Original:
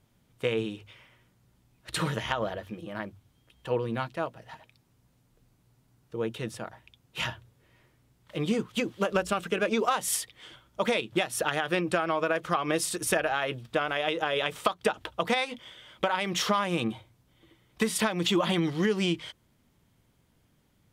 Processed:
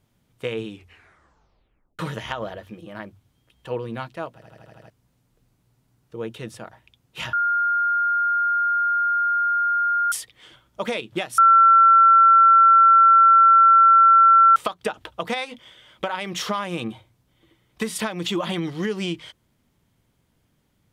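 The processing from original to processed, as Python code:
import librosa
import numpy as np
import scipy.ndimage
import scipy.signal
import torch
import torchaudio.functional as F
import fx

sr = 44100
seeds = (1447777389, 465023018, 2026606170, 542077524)

y = fx.edit(x, sr, fx.tape_stop(start_s=0.69, length_s=1.3),
    fx.stutter_over(start_s=4.34, slice_s=0.08, count=7),
    fx.bleep(start_s=7.33, length_s=2.79, hz=1410.0, db=-18.0),
    fx.bleep(start_s=11.38, length_s=3.18, hz=1350.0, db=-9.5), tone=tone)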